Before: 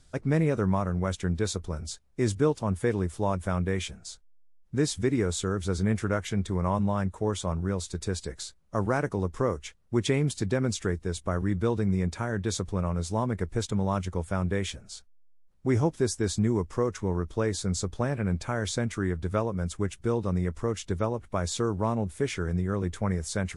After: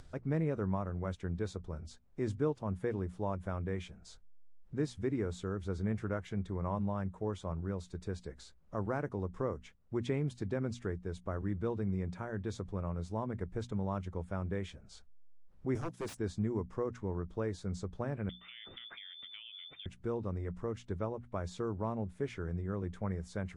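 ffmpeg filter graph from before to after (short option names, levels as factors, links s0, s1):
-filter_complex "[0:a]asettb=1/sr,asplit=3[s0][s1][s2];[s0]atrim=end=15.754[s3];[s1]atrim=start=15.75:end=16.17,asetpts=PTS-STARTPTS,afade=t=in:d=0.004:c=qsin,afade=t=out:st=0.416:d=0.004:c=qsin,highpass=120,aemphasis=mode=production:type=75fm,aeval=exprs='0.0708*(abs(mod(val(0)/0.0708+3,4)-2)-1)':c=same[s4];[s2]atrim=start=16.166[s5];[s3][s4]acrossfade=d=0.004:c1=hsin:c2=qsin[s6];[s6][s5]acrossfade=d=0.004:c1=qsin:c2=hsin,asettb=1/sr,asplit=3[s7][s8][s9];[s7]atrim=end=18.294[s10];[s8]atrim=start=18.29:end=19.86,asetpts=PTS-STARTPTS,afade=t=in:d=0.004:c=qsin,afade=t=out:st=1.566:d=0.004:c=qsin,lowpass=f=3100:t=q:w=0.5098,lowpass=f=3100:t=q:w=0.6013,lowpass=f=3100:t=q:w=0.9,lowpass=f=3100:t=q:w=2.563,afreqshift=-3600,acompressor=threshold=0.0178:ratio=6:attack=3.2:release=140:knee=1:detection=peak[s11];[s9]atrim=start=19.856[s12];[s10][s11]acrossfade=d=0.004:c1=hsin:c2=qsin[s13];[s13][s12]acrossfade=d=0.004:c1=qsin:c2=hsin,lowpass=f=1600:p=1,bandreject=f=60:t=h:w=6,bandreject=f=120:t=h:w=6,bandreject=f=180:t=h:w=6,bandreject=f=240:t=h:w=6,acompressor=mode=upward:threshold=0.02:ratio=2.5,volume=0.398"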